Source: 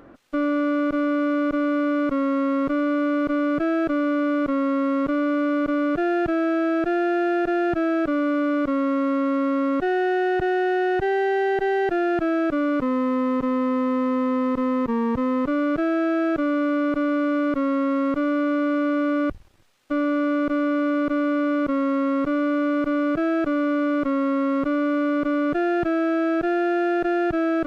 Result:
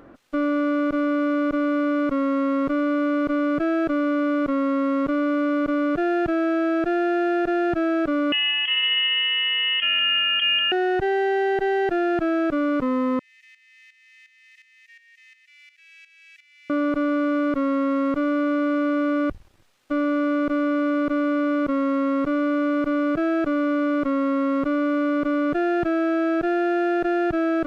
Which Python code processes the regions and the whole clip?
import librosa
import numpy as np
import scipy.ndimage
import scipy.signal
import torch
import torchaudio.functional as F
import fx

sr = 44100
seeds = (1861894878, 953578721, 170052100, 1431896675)

y = fx.chain(x, sr, fx.echo_filtered(ms=190, feedback_pct=58, hz=1900.0, wet_db=-9),
    fx.freq_invert(carrier_hz=3200),
    fx.low_shelf(hz=270.0, db=-9.5), at=(8.32, 10.72))
y = fx.chain(y, sr, fx.cheby_ripple_highpass(hz=1800.0, ripple_db=6),
    fx.tremolo_shape(shape='saw_up', hz=2.8, depth_pct=75), at=(13.19, 16.7))